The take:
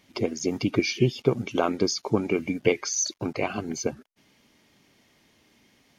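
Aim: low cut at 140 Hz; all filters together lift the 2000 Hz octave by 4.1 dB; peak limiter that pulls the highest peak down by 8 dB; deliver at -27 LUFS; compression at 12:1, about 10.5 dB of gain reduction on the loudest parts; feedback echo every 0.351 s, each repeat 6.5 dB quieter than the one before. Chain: HPF 140 Hz; bell 2000 Hz +5 dB; compressor 12:1, threshold -27 dBFS; limiter -23.5 dBFS; feedback echo 0.351 s, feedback 47%, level -6.5 dB; gain +7.5 dB

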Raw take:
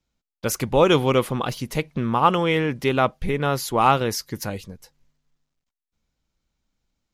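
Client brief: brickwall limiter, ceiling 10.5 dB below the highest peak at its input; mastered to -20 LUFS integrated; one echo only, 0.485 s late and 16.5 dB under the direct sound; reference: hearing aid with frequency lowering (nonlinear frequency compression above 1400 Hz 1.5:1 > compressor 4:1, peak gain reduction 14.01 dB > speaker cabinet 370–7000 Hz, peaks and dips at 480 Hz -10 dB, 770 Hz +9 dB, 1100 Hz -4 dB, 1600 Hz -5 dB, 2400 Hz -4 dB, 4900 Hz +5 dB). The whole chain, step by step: limiter -13.5 dBFS; echo 0.485 s -16.5 dB; nonlinear frequency compression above 1400 Hz 1.5:1; compressor 4:1, threshold -35 dBFS; speaker cabinet 370–7000 Hz, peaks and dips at 480 Hz -10 dB, 770 Hz +9 dB, 1100 Hz -4 dB, 1600 Hz -5 dB, 2400 Hz -4 dB, 4900 Hz +5 dB; gain +20 dB

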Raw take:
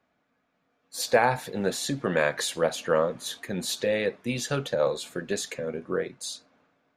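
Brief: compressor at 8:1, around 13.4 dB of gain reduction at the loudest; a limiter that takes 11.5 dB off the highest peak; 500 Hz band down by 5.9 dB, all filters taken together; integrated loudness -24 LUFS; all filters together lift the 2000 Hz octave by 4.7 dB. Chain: bell 500 Hz -7 dB; bell 2000 Hz +6.5 dB; compressor 8:1, threshold -31 dBFS; gain +16 dB; limiter -13.5 dBFS

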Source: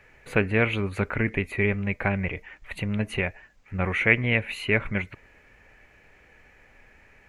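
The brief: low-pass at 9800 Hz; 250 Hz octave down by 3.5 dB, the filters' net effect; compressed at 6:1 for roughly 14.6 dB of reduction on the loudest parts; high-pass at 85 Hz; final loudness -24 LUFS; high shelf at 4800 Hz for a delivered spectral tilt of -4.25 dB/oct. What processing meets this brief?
HPF 85 Hz; LPF 9800 Hz; bell 250 Hz -4.5 dB; high shelf 4800 Hz -3 dB; compressor 6:1, threshold -31 dBFS; gain +12 dB

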